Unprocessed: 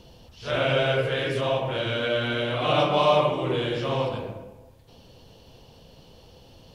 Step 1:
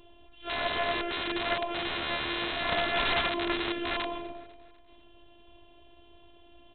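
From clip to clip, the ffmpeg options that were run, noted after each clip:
-af "afftfilt=real='hypot(re,im)*cos(PI*b)':imag='0':win_size=512:overlap=0.75,aresample=8000,aeval=exprs='(mod(11.9*val(0)+1,2)-1)/11.9':c=same,aresample=44100,aecho=1:1:248|496|744|992:0.0891|0.0455|0.0232|0.0118"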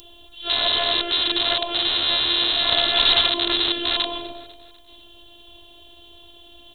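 -filter_complex "[0:a]equalizer=f=180:w=4.3:g=-11,asplit=2[a][b];[b]alimiter=level_in=1.5dB:limit=-24dB:level=0:latency=1,volume=-1.5dB,volume=-2dB[c];[a][c]amix=inputs=2:normalize=0,aexciter=amount=11.9:drive=2.6:freq=3.4k"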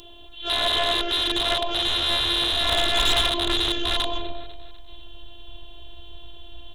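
-af "lowpass=f=3.6k:p=1,asubboost=boost=4.5:cutoff=100,asoftclip=type=tanh:threshold=-17dB,volume=2.5dB"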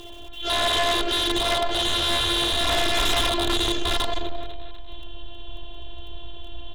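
-af "aemphasis=mode=reproduction:type=50fm,aeval=exprs='val(0)*gte(abs(val(0)),0.00266)':c=same,aeval=exprs='0.188*(cos(1*acos(clip(val(0)/0.188,-1,1)))-cos(1*PI/2))+0.0376*(cos(5*acos(clip(val(0)/0.188,-1,1)))-cos(5*PI/2))':c=same"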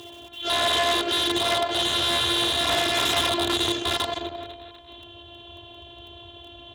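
-af "highpass=f=81:w=0.5412,highpass=f=81:w=1.3066"

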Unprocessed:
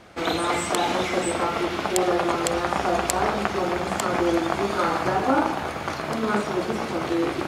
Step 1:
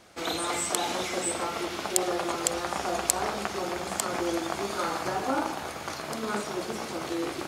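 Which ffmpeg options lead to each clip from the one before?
-af "bass=f=250:g=-3,treble=f=4k:g=10,volume=-7dB"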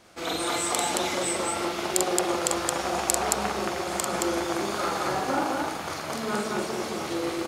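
-af "aecho=1:1:43.73|221.6:0.708|0.891,volume=-1dB"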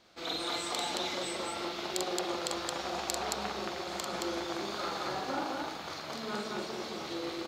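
-af "equalizer=f=100:t=o:w=0.67:g=-4,equalizer=f=4k:t=o:w=0.67:g=8,equalizer=f=10k:t=o:w=0.67:g=-11,volume=-8.5dB"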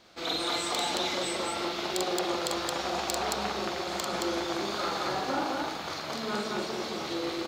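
-af "asoftclip=type=tanh:threshold=-22dB,volume=5dB"

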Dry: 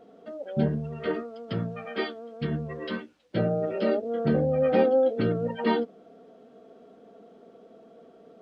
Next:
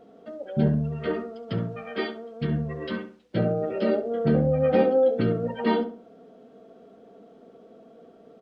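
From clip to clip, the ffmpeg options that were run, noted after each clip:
-filter_complex "[0:a]lowshelf=f=210:g=4,asplit=2[a][b];[b]adelay=67,lowpass=f=1.6k:p=1,volume=-9dB,asplit=2[c][d];[d]adelay=67,lowpass=f=1.6k:p=1,volume=0.36,asplit=2[e][f];[f]adelay=67,lowpass=f=1.6k:p=1,volume=0.36,asplit=2[g][h];[h]adelay=67,lowpass=f=1.6k:p=1,volume=0.36[i];[a][c][e][g][i]amix=inputs=5:normalize=0"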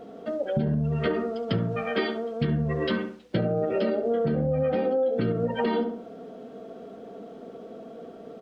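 -af "alimiter=limit=-19.5dB:level=0:latency=1:release=162,acompressor=threshold=-31dB:ratio=4,volume=8.5dB"

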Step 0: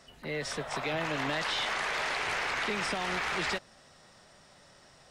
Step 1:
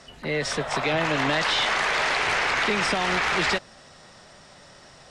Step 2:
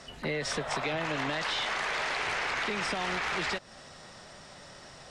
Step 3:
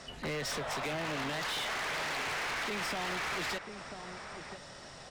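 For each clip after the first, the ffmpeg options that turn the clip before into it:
-af "lowpass=9.3k,volume=8.5dB"
-af "acompressor=threshold=-29dB:ratio=6"
-filter_complex "[0:a]asplit=2[a][b];[b]adelay=991.3,volume=-12dB,highshelf=f=4k:g=-22.3[c];[a][c]amix=inputs=2:normalize=0,asoftclip=type=hard:threshold=-33dB"

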